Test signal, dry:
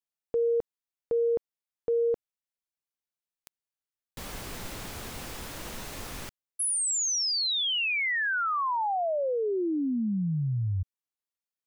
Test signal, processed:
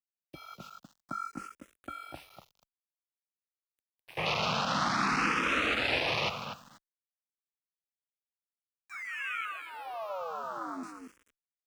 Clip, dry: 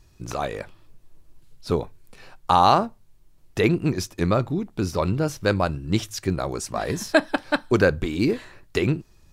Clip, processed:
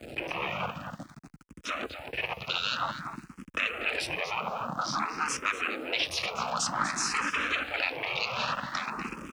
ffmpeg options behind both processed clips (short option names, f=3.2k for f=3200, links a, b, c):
-filter_complex "[0:a]aeval=exprs='val(0)+0.5*0.0447*sgn(val(0))':c=same,afftfilt=real='re*lt(hypot(re,im),0.141)':imag='im*lt(hypot(re,im),0.141)':win_size=1024:overlap=0.75,afwtdn=0.0141,agate=range=-12dB:threshold=-49dB:ratio=16:release=257:detection=peak,highshelf=f=7.1k:g=-7,asplit=2[a][b];[b]alimiter=level_in=2dB:limit=-24dB:level=0:latency=1:release=243,volume=-2dB,volume=2dB[c];[a][c]amix=inputs=2:normalize=0,highpass=120,equalizer=f=120:t=q:w=4:g=-7,equalizer=f=410:t=q:w=4:g=-6,equalizer=f=1.3k:t=q:w=4:g=9,equalizer=f=2.6k:t=q:w=4:g=8,lowpass=f=9.9k:w=0.5412,lowpass=f=9.9k:w=1.3066,flanger=delay=4.5:depth=3.9:regen=-78:speed=0.23:shape=triangular,afreqshift=-20,asplit=2[d][e];[e]adelay=243,lowpass=f=4.2k:p=1,volume=-8dB,asplit=2[f][g];[g]adelay=243,lowpass=f=4.2k:p=1,volume=0.16,asplit=2[h][i];[i]adelay=243,lowpass=f=4.2k:p=1,volume=0.16[j];[f][h][j]amix=inputs=3:normalize=0[k];[d][k]amix=inputs=2:normalize=0,aeval=exprs='val(0)*gte(abs(val(0)),0.00224)':c=same,asplit=2[l][m];[m]afreqshift=0.52[n];[l][n]amix=inputs=2:normalize=1,volume=3dB"